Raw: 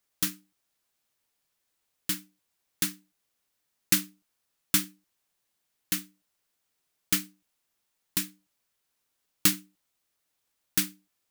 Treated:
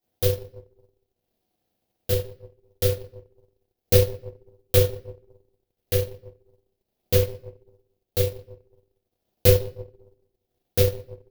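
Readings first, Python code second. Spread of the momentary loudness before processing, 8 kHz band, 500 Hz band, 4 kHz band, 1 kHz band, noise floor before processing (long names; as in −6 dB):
12 LU, −4.0 dB, +30.5 dB, +0.5 dB, +3.0 dB, −79 dBFS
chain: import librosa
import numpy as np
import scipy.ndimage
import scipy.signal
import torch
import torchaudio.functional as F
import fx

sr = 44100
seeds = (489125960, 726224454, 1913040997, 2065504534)

y = fx.graphic_eq_10(x, sr, hz=(125, 250, 500, 1000, 2000, 8000), db=(-4, 10, 11, -9, -6, -10))
y = fx.room_shoebox(y, sr, seeds[0], volume_m3=140.0, walls='mixed', distance_m=2.2)
y = y * np.sin(2.0 * np.pi * 200.0 * np.arange(len(y)) / sr)
y = fx.transient(y, sr, attack_db=3, sustain_db=-10)
y = y * 10.0 ** (-2.0 / 20.0)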